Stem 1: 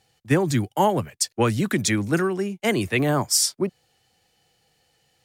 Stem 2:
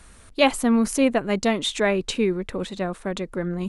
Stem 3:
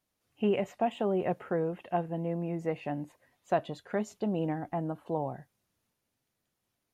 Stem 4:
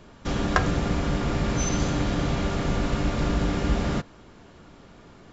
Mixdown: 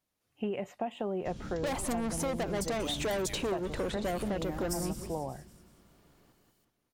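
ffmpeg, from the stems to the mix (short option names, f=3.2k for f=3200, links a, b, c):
-filter_complex "[0:a]aemphasis=mode=production:type=riaa,adelay=1400,volume=-18.5dB,asplit=2[a][b];[b]volume=-21dB[c];[1:a]agate=range=-33dB:threshold=-38dB:ratio=3:detection=peak,equalizer=f=670:w=0.7:g=10.5,asoftclip=type=tanh:threshold=-22dB,adelay=1250,volume=-2.5dB,asplit=2[d][e];[e]volume=-20.5dB[f];[2:a]acontrast=46,volume=-7.5dB,asplit=2[g][h];[3:a]acrossover=split=320|3000[i][j][k];[j]acompressor=threshold=-50dB:ratio=6[l];[i][l][k]amix=inputs=3:normalize=0,adelay=1000,volume=-15.5dB,asplit=2[m][n];[n]volume=-4dB[o];[h]apad=whole_len=293106[p];[a][p]sidechaincompress=threshold=-42dB:ratio=8:attack=16:release=120[q];[c][f][o]amix=inputs=3:normalize=0,aecho=0:1:189|378|567|756|945|1134|1323:1|0.47|0.221|0.104|0.0488|0.0229|0.0108[r];[q][d][g][m][r]amix=inputs=5:normalize=0,acompressor=threshold=-30dB:ratio=6"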